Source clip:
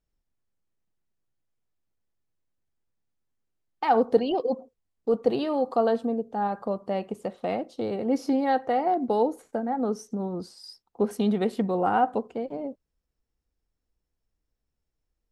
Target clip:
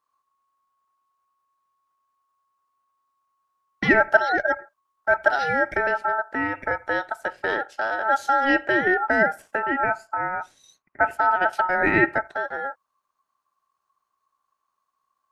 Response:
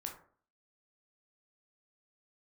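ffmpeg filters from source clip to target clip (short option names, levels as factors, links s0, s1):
-filter_complex "[0:a]asettb=1/sr,asplit=3[s0][s1][s2];[s0]atrim=end=5.724[s3];[s1]atrim=start=5.72:end=6.71,asetpts=PTS-STARTPTS,afade=t=in:d=0.004:c=qsin,afade=t=out:st=0.986:d=0.004:c=qsin,acrossover=split=350[s4][s5];[s5]acompressor=threshold=0.0447:ratio=5[s6];[s4][s6]amix=inputs=2:normalize=0[s7];[s2]atrim=start=6.706[s8];[s3][s7]acrossfade=d=0.004:c1=hsin:c2=qsin[s9];[s9][s8]acrossfade=d=0.004:c1=qsin:c2=hsin,asettb=1/sr,asplit=3[s10][s11][s12];[s10]atrim=end=9.834[s13];[s11]atrim=start=9.83:end=11.53,asetpts=PTS-STARTPTS,afade=t=in:d=0.004:c=qsin,afade=t=out:st=1.696:d=0.004:c=qsin,highshelf=f=2200:t=q:w=1.5:g=-11.5[s14];[s12]atrim=start=11.526[s15];[s13][s14]acrossfade=d=0.004:c1=hsin:c2=qsin[s16];[s16][s15]acrossfade=d=0.004:c1=qsin:c2=hsin,aeval=exprs='val(0)*sin(2*PI*1100*n/s)':c=same,volume=2.11"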